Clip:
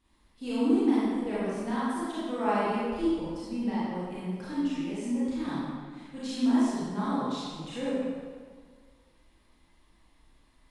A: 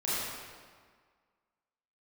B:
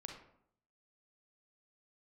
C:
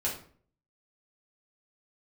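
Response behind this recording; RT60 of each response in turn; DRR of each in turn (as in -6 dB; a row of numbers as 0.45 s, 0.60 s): A; 1.7 s, 0.70 s, 0.50 s; -10.5 dB, 2.0 dB, -6.0 dB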